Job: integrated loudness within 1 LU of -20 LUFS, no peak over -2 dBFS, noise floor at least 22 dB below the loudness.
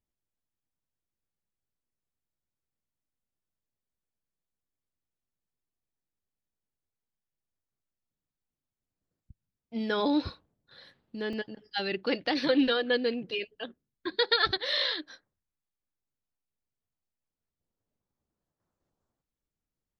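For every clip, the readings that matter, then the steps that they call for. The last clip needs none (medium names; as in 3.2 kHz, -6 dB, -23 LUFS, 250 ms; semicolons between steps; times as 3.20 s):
dropouts 1; longest dropout 3.0 ms; loudness -29.0 LUFS; peak level -12.5 dBFS; loudness target -20.0 LUFS
-> interpolate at 11.33 s, 3 ms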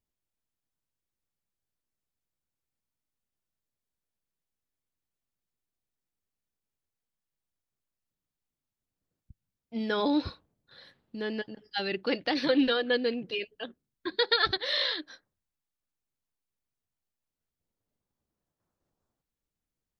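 dropouts 0; loudness -29.0 LUFS; peak level -12.5 dBFS; loudness target -20.0 LUFS
-> trim +9 dB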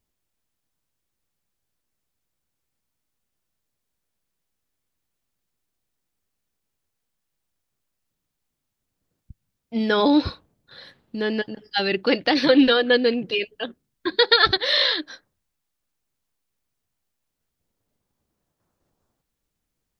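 loudness -20.0 LUFS; peak level -3.5 dBFS; noise floor -80 dBFS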